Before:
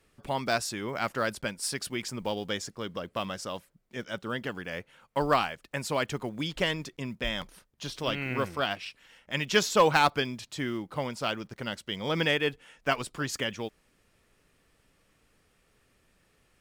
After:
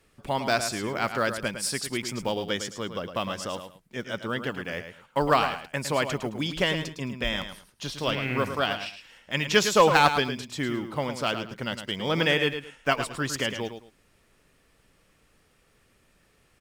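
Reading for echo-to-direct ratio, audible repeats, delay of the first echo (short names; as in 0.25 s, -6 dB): -9.0 dB, 2, 0.108 s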